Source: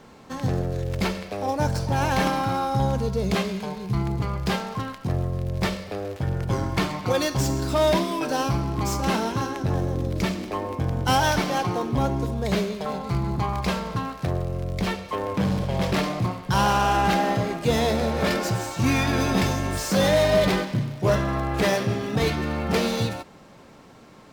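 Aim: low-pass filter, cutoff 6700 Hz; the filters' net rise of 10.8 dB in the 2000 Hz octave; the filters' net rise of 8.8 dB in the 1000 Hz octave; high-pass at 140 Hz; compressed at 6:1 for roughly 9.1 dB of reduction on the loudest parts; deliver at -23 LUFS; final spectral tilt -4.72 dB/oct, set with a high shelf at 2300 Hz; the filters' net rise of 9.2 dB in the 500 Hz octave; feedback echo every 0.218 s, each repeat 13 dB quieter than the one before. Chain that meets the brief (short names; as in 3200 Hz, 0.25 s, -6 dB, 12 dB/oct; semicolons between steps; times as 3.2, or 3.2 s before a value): HPF 140 Hz; LPF 6700 Hz; bell 500 Hz +9 dB; bell 1000 Hz +5 dB; bell 2000 Hz +8.5 dB; high shelf 2300 Hz +6 dB; compressor 6:1, threshold -17 dBFS; feedback echo 0.218 s, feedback 22%, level -13 dB; gain -1 dB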